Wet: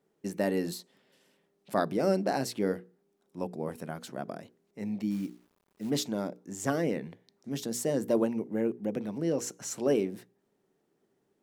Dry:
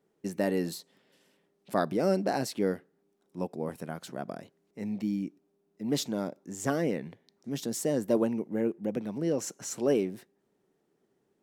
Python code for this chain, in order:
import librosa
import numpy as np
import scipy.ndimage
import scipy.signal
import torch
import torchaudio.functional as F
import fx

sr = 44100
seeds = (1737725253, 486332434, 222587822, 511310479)

y = fx.hum_notches(x, sr, base_hz=60, count=8)
y = fx.quant_companded(y, sr, bits=6, at=(5.1, 5.89), fade=0.02)